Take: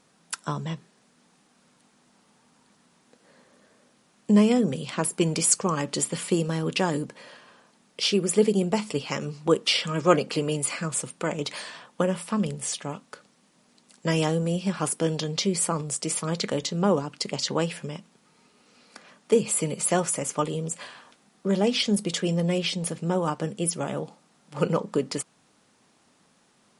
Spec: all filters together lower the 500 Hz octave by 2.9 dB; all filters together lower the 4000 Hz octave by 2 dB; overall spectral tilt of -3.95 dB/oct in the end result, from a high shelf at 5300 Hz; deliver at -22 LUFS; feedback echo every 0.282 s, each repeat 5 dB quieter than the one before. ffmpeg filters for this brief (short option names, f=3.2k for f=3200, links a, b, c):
-af "equalizer=f=500:t=o:g=-3.5,equalizer=f=4k:t=o:g=-4.5,highshelf=f=5.3k:g=4,aecho=1:1:282|564|846|1128|1410|1692|1974:0.562|0.315|0.176|0.0988|0.0553|0.031|0.0173,volume=3dB"